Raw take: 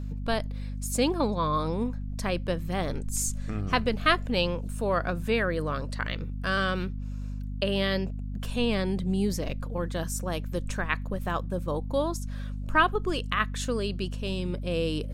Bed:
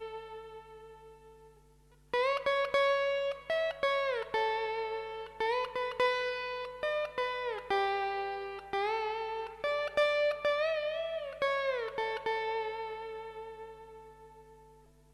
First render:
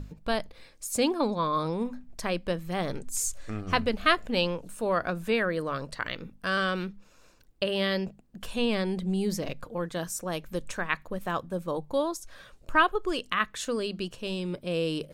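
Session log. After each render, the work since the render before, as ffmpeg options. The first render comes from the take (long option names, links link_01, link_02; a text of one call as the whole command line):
ffmpeg -i in.wav -af "bandreject=frequency=50:width_type=h:width=6,bandreject=frequency=100:width_type=h:width=6,bandreject=frequency=150:width_type=h:width=6,bandreject=frequency=200:width_type=h:width=6,bandreject=frequency=250:width_type=h:width=6" out.wav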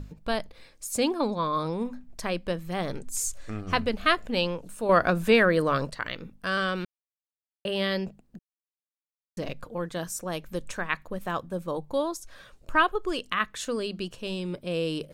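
ffmpeg -i in.wav -filter_complex "[0:a]asettb=1/sr,asplit=3[link_01][link_02][link_03];[link_01]atrim=end=4.894[link_04];[link_02]atrim=start=4.89:end=5.9,asetpts=PTS-STARTPTS,afade=type=in:duration=0.004:curve=qsin,afade=type=out:start_time=1.006:duration=0.004:curve=qsin,acontrast=79[link_05];[link_03]atrim=start=5.896[link_06];[link_04][link_05]acrossfade=duration=0.004:curve1=hsin:curve2=qsin[link_07];[link_07][link_06]acrossfade=duration=0.004:curve1=qsin:curve2=hsin,asplit=5[link_08][link_09][link_10][link_11][link_12];[link_08]atrim=end=6.85,asetpts=PTS-STARTPTS,afade=type=out:start_time=6.846:duration=0.004:curve=hsin[link_13];[link_09]atrim=start=6.85:end=7.65,asetpts=PTS-STARTPTS,volume=0[link_14];[link_10]atrim=start=7.65:end=8.39,asetpts=PTS-STARTPTS,afade=type=in:duration=0.004:curve=hsin,afade=type=out:start_time=0.736:duration=0.004:curve=hsin[link_15];[link_11]atrim=start=8.39:end=9.37,asetpts=PTS-STARTPTS,volume=0[link_16];[link_12]atrim=start=9.37,asetpts=PTS-STARTPTS,afade=type=in:duration=0.004:curve=hsin[link_17];[link_13][link_14][link_15][link_16][link_17]concat=n=5:v=0:a=1" out.wav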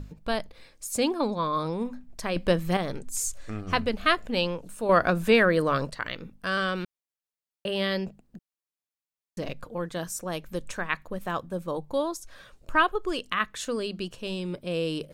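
ffmpeg -i in.wav -filter_complex "[0:a]asettb=1/sr,asplit=3[link_01][link_02][link_03];[link_01]atrim=end=2.364[link_04];[link_02]atrim=start=2.36:end=2.77,asetpts=PTS-STARTPTS,afade=type=in:duration=0.004:curve=qsin,afade=type=out:start_time=0.406:duration=0.004:curve=qsin,acontrast=85[link_05];[link_03]atrim=start=2.766[link_06];[link_04][link_05]acrossfade=duration=0.004:curve1=hsin:curve2=qsin[link_07];[link_07][link_06]acrossfade=duration=0.004:curve1=qsin:curve2=hsin" out.wav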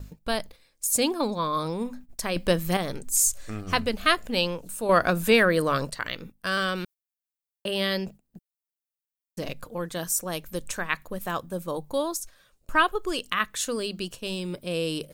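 ffmpeg -i in.wav -af "agate=range=-12dB:threshold=-43dB:ratio=16:detection=peak,aemphasis=mode=production:type=50kf" out.wav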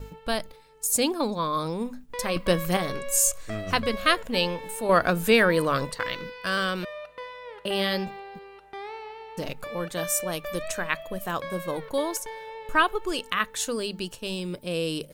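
ffmpeg -i in.wav -i bed.wav -filter_complex "[1:a]volume=-5.5dB[link_01];[0:a][link_01]amix=inputs=2:normalize=0" out.wav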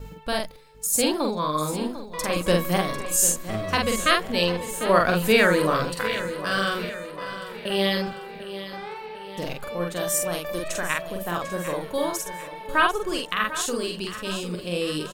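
ffmpeg -i in.wav -filter_complex "[0:a]asplit=2[link_01][link_02];[link_02]adelay=46,volume=-2.5dB[link_03];[link_01][link_03]amix=inputs=2:normalize=0,aecho=1:1:747|1494|2241|2988|3735:0.224|0.114|0.0582|0.0297|0.0151" out.wav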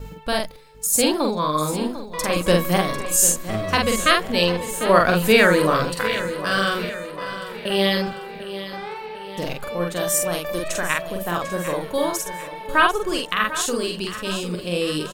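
ffmpeg -i in.wav -af "volume=3.5dB,alimiter=limit=-1dB:level=0:latency=1" out.wav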